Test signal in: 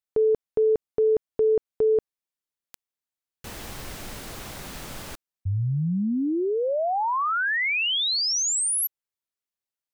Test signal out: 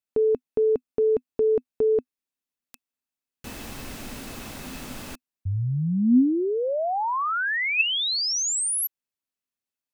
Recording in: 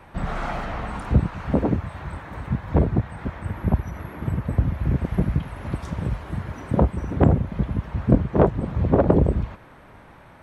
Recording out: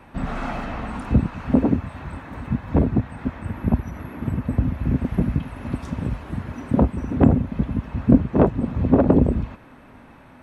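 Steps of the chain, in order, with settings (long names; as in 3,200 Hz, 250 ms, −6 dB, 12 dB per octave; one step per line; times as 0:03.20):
hollow resonant body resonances 250/2,600 Hz, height 11 dB, ringing for 65 ms
level −1 dB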